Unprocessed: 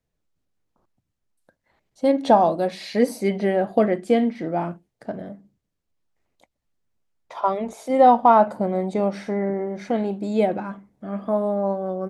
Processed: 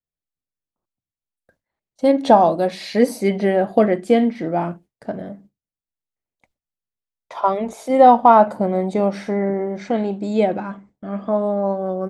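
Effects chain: gate with hold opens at -42 dBFS; 9.78–11.79 s: elliptic low-pass 8.1 kHz, stop band 40 dB; trim +3.5 dB

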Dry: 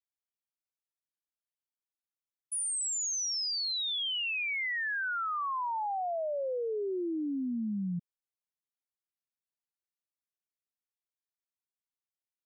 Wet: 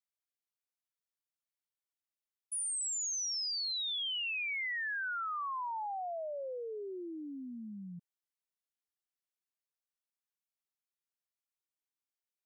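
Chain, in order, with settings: bass shelf 390 Hz -11 dB; trim -3 dB

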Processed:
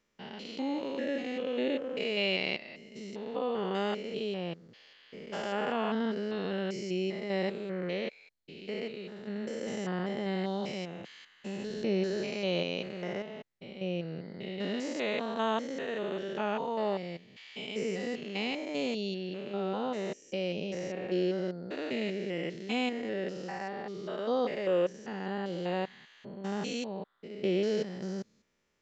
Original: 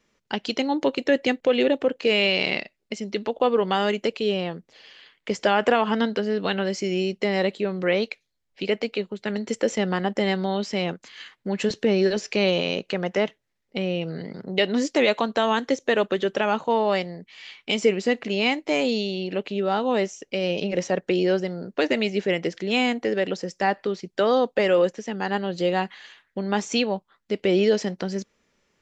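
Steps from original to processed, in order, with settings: spectrogram pixelated in time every 200 ms; trim -7 dB

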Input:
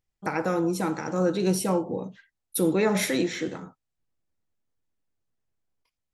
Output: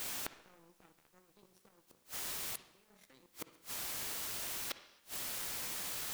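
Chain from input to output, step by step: power-law waveshaper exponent 3; compressor with a negative ratio -41 dBFS, ratio -1; word length cut 8-bit, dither triangular; time-frequency box 4.71–4.99 s, 220–6100 Hz +12 dB; inverted gate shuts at -34 dBFS, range -33 dB; on a send: reverberation RT60 0.80 s, pre-delay 46 ms, DRR 11.5 dB; on the sum: trim +7 dB

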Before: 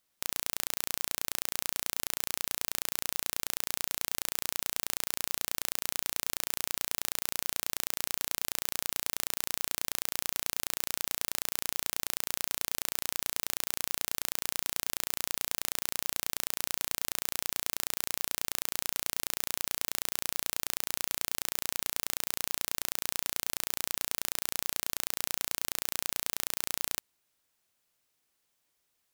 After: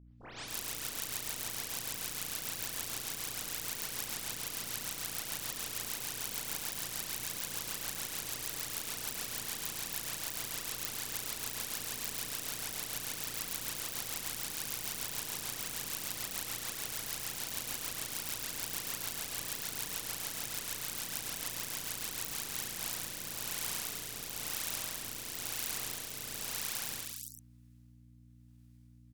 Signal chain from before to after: delay that grows with frequency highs late, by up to 282 ms; rotary cabinet horn 6.7 Hz, later 1 Hz, at 22.15 s; harmony voices -5 st -2 dB, +7 st -2 dB; hum 60 Hz, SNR 16 dB; on a send: delay 109 ms -6.5 dB; on the sum: trim -4.5 dB

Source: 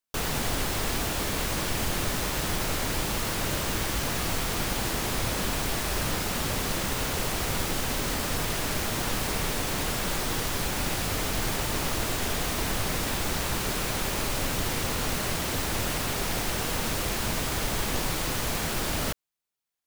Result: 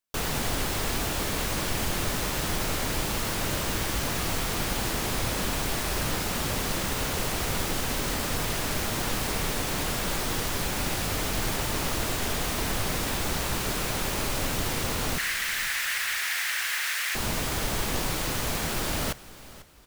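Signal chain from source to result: 15.18–17.15 s: resonant high-pass 1.8 kHz, resonance Q 3.1; frequency-shifting echo 494 ms, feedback 35%, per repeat -33 Hz, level -18 dB

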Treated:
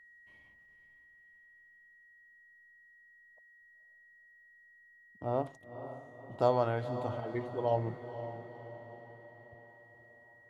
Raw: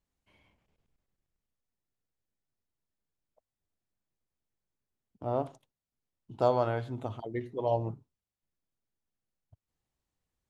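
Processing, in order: whistle 1.9 kHz -55 dBFS; echo that smears into a reverb 501 ms, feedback 52%, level -10.5 dB; trim -1.5 dB

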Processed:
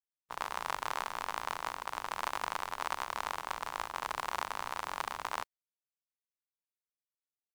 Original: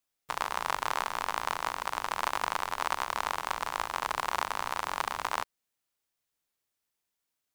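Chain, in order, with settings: gate -35 dBFS, range -22 dB; trim -5 dB

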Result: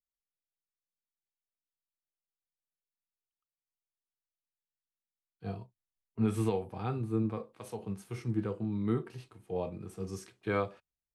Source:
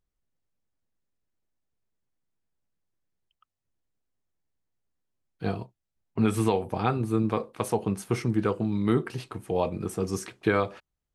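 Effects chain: harmonic-percussive split percussive -10 dB; three bands expanded up and down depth 40%; trim -5.5 dB

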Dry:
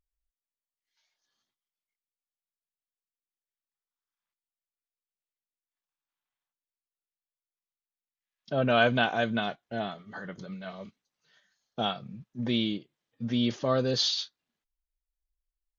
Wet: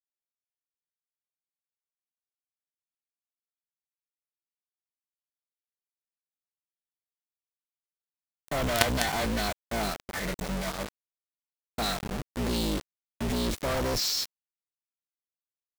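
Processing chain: octave divider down 2 oct, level -1 dB; companded quantiser 2-bit; formant shift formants +3 st; trim -2.5 dB

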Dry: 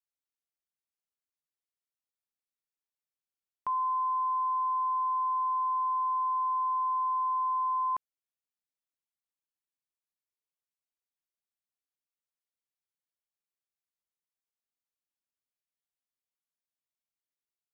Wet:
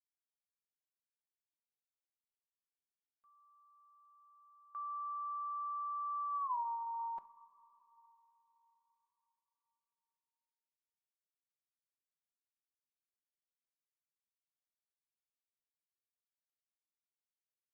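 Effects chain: Doppler pass-by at 6.50 s, 40 m/s, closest 2.8 m; comb 5.2 ms, depth 73%; compression 5:1, threshold -50 dBFS, peak gain reduction 21 dB; gate with hold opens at -51 dBFS; two-slope reverb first 0.42 s, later 4.4 s, from -17 dB, DRR 12.5 dB; trim +11 dB

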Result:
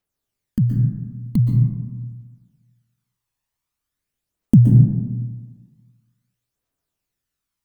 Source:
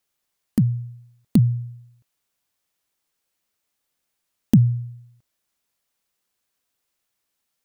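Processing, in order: bass shelf 210 Hz +8 dB; phaser 0.45 Hz, delay 1.2 ms, feedback 57%; plate-style reverb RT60 1.4 s, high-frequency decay 0.3×, pre-delay 110 ms, DRR 0.5 dB; trim -8.5 dB

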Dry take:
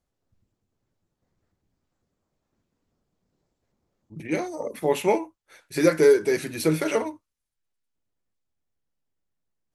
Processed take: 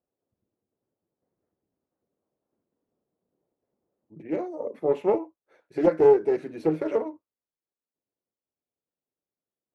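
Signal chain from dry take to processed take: band-pass filter 450 Hz, Q 1.1; loudspeaker Doppler distortion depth 0.28 ms

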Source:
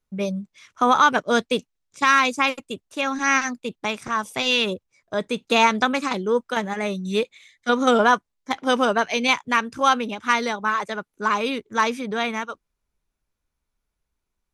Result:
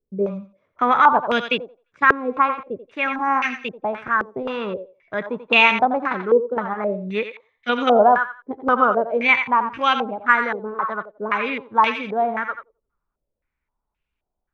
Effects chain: thinning echo 87 ms, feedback 28%, high-pass 690 Hz, level -7.5 dB; step-sequenced low-pass 3.8 Hz 430–2700 Hz; trim -2.5 dB

